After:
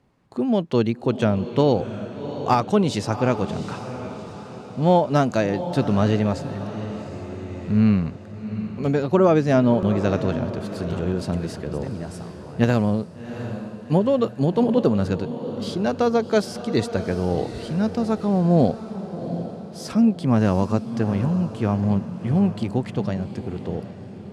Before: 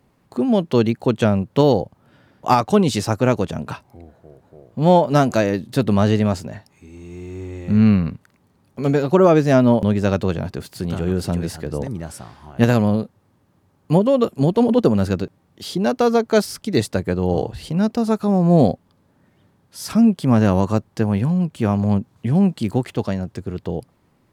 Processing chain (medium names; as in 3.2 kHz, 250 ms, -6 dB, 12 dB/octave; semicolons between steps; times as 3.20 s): Bessel low-pass 7.2 kHz, order 2; on a send: echo that smears into a reverb 734 ms, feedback 48%, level -11 dB; on the sum: trim -3.5 dB